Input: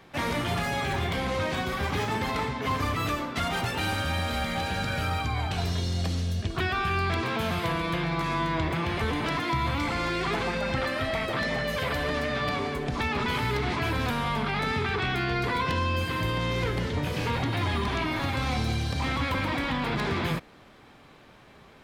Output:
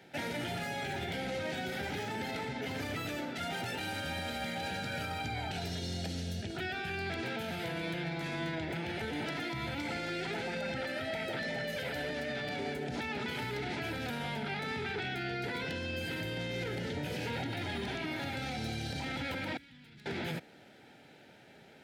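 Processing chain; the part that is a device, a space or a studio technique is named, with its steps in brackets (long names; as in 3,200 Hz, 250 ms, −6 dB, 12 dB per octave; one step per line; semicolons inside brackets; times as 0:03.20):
PA system with an anti-feedback notch (high-pass filter 130 Hz 12 dB per octave; Butterworth band-reject 1,100 Hz, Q 2.7; brickwall limiter −25.5 dBFS, peak gain reduction 9 dB)
0:19.57–0:20.06: guitar amp tone stack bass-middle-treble 6-0-2
level −3 dB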